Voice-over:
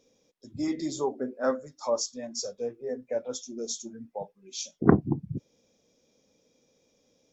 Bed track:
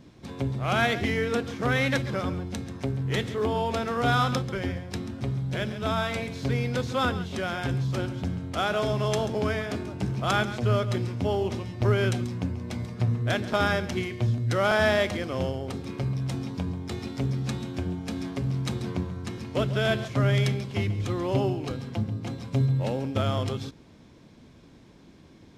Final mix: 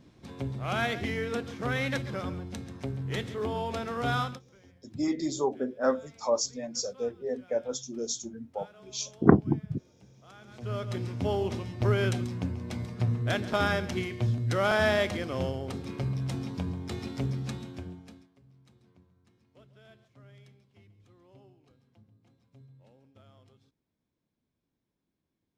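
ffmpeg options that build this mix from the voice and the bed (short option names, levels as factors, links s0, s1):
-filter_complex "[0:a]adelay=4400,volume=1.12[s0];[1:a]volume=10,afade=t=out:st=4.19:d=0.21:silence=0.0749894,afade=t=in:st=10.41:d=0.84:silence=0.0530884,afade=t=out:st=17.17:d=1.1:silence=0.0354813[s1];[s0][s1]amix=inputs=2:normalize=0"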